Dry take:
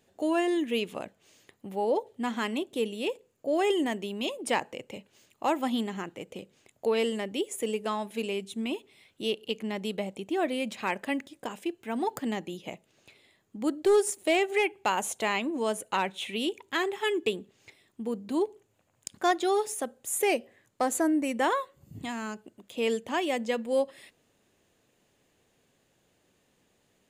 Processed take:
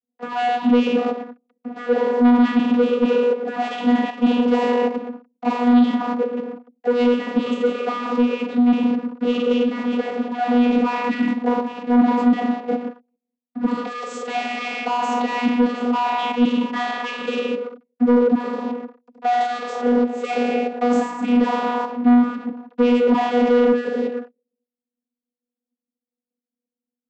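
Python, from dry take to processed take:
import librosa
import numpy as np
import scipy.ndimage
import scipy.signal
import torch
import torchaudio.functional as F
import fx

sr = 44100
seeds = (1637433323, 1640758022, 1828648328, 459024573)

y = fx.spec_trails(x, sr, decay_s=1.07)
y = fx.env_lowpass(y, sr, base_hz=400.0, full_db=-19.5)
y = fx.peak_eq(y, sr, hz=1600.0, db=-6.5, octaves=0.27)
y = fx.hum_notches(y, sr, base_hz=50, count=9)
y = fx.leveller(y, sr, passes=5)
y = fx.level_steps(y, sr, step_db=10)
y = fx.leveller(y, sr, passes=1)
y = fx.vocoder(y, sr, bands=32, carrier='saw', carrier_hz=243.0)
y = 10.0 ** (-11.0 / 20.0) * np.tanh(y / 10.0 ** (-11.0 / 20.0))
y = fx.air_absorb(y, sr, metres=59.0)
y = fx.band_squash(y, sr, depth_pct=40, at=(7.46, 10.11))
y = y * librosa.db_to_amplitude(2.0)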